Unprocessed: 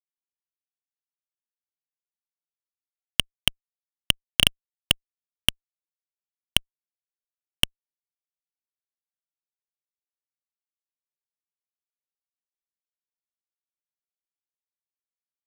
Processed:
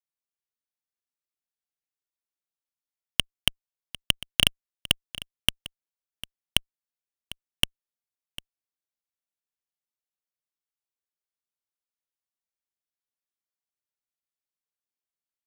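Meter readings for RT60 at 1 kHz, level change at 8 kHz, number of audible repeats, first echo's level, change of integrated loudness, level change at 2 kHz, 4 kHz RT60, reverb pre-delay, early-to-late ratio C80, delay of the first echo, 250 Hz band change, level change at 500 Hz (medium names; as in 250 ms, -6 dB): no reverb, -2.0 dB, 1, -17.5 dB, -2.0 dB, -2.0 dB, no reverb, no reverb, no reverb, 750 ms, -2.0 dB, -2.0 dB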